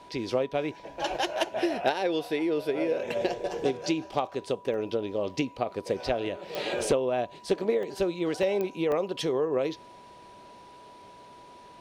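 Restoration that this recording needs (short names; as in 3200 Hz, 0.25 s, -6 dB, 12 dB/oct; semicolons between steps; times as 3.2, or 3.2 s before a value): de-click; notch 980 Hz, Q 30; interpolate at 4.74/7.83/8.43/8.92, 1.4 ms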